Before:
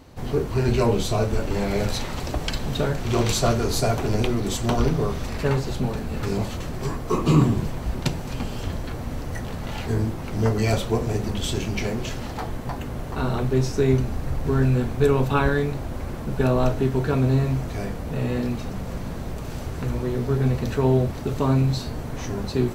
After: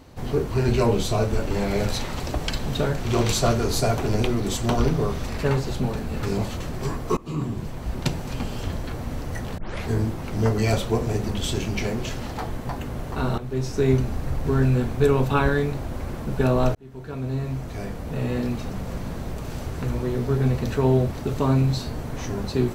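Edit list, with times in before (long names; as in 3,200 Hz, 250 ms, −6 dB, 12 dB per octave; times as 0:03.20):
0:07.17–0:08.10: fade in, from −22.5 dB
0:09.58: tape start 0.26 s
0:13.38–0:13.88: fade in, from −12.5 dB
0:16.75–0:18.84: fade in equal-power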